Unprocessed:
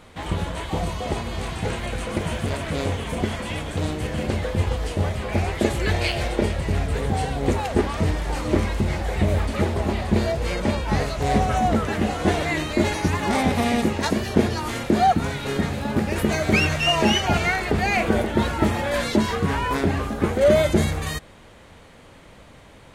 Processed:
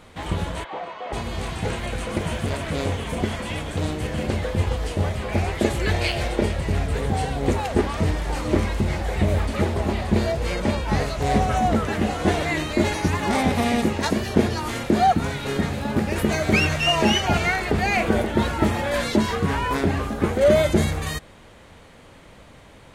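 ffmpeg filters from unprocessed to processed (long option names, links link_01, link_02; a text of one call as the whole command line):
ffmpeg -i in.wav -filter_complex "[0:a]asplit=3[link_01][link_02][link_03];[link_01]afade=type=out:start_time=0.63:duration=0.02[link_04];[link_02]highpass=570,lowpass=2200,afade=type=in:start_time=0.63:duration=0.02,afade=type=out:start_time=1.12:duration=0.02[link_05];[link_03]afade=type=in:start_time=1.12:duration=0.02[link_06];[link_04][link_05][link_06]amix=inputs=3:normalize=0" out.wav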